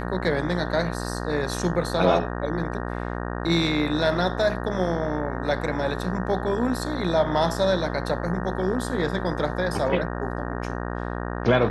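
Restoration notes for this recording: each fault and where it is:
mains buzz 60 Hz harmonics 31 −30 dBFS

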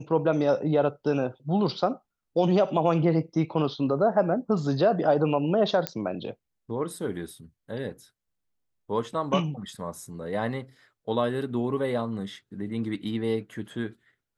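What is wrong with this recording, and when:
0:05.87: click −10 dBFS

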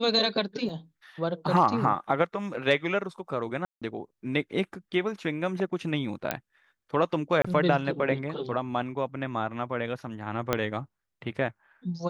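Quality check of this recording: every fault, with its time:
0:00.69: drop-out 2.7 ms
0:03.65–0:03.82: drop-out 166 ms
0:06.31: click −11 dBFS
0:07.42–0:07.45: drop-out 25 ms
0:10.53: click −9 dBFS

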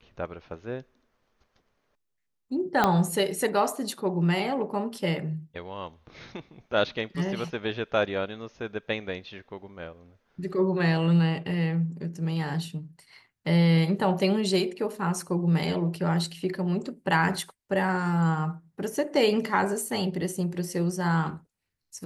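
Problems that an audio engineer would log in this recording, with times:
0:02.84: click −8 dBFS

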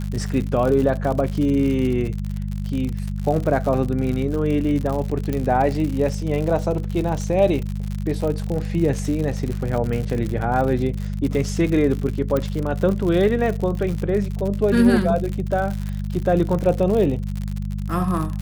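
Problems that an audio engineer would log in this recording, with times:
surface crackle 84 per second −25 dBFS
mains hum 50 Hz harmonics 4 −26 dBFS
0:05.33: click −12 dBFS
0:12.37: click −11 dBFS

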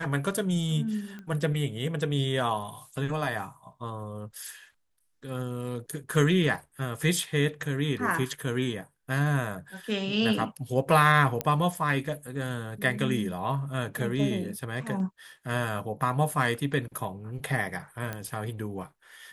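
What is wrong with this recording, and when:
0:01.19: click −29 dBFS
0:11.41: click −11 dBFS
0:18.13: click −19 dBFS

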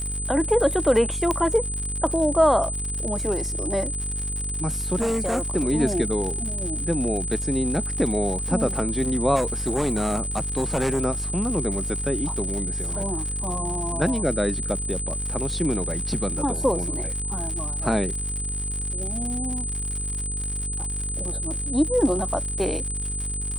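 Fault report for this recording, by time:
mains buzz 50 Hz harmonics 10 −31 dBFS
surface crackle 130 per second −30 dBFS
whistle 8,100 Hz −29 dBFS
0:01.31: click −10 dBFS
0:04.98–0:05.50: clipping −20 dBFS
0:09.35–0:11.00: clipping −18.5 dBFS

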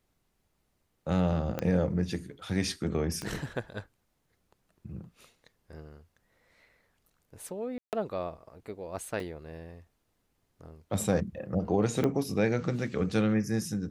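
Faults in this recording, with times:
0:01.59: click −17 dBFS
0:03.22: click −22 dBFS
0:07.78–0:07.93: drop-out 148 ms
0:09.20: drop-out 2.6 ms
0:12.04: click −16 dBFS

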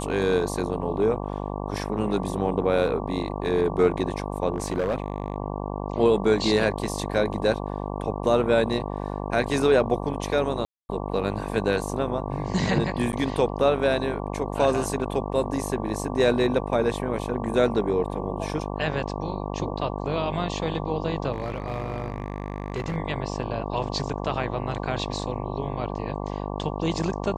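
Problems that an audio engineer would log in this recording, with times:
mains buzz 50 Hz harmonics 23 −31 dBFS
0:04.54–0:05.36: clipping −20 dBFS
0:10.65–0:10.89: drop-out 240 ms
0:13.12–0:13.13: drop-out 9.6 ms
0:21.32–0:22.96: clipping −23.5 dBFS

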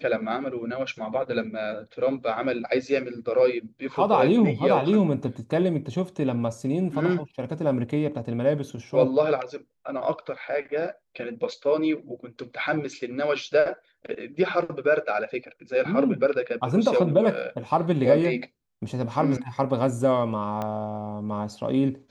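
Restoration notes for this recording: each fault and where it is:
0:20.62: click −17 dBFS

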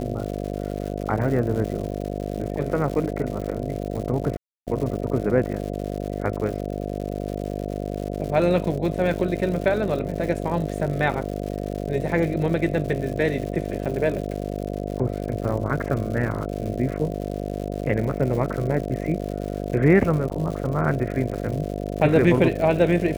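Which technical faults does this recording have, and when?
mains buzz 50 Hz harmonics 14 −29 dBFS
surface crackle 170 per second −31 dBFS
0:04.37–0:04.67: drop-out 298 ms
0:20.30–0:20.31: drop-out 7 ms

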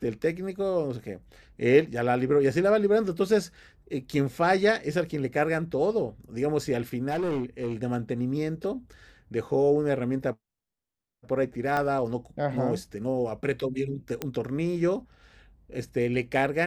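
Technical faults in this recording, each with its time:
0:07.10–0:07.74: clipping −25 dBFS
0:11.77: click −16 dBFS
0:14.22: click −15 dBFS

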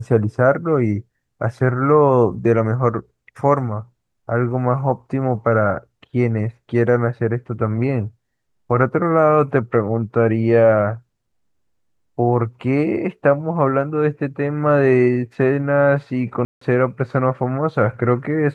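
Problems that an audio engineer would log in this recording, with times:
0:16.45–0:16.61: drop-out 164 ms

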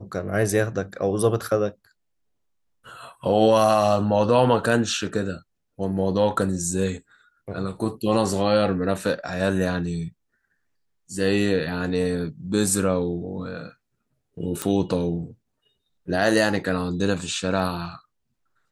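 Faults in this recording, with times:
0:14.62: click

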